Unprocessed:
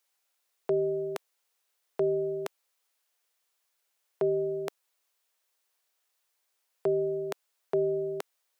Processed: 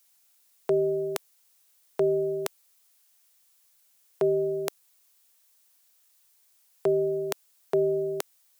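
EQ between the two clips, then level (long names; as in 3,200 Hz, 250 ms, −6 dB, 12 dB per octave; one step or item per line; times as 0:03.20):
high-shelf EQ 4,400 Hz +12 dB
+3.0 dB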